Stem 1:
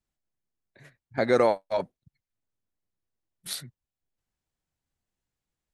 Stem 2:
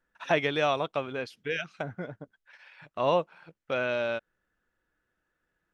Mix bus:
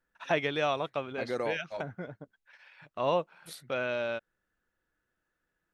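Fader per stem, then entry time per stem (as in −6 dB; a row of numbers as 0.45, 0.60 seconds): −12.0, −3.0 decibels; 0.00, 0.00 seconds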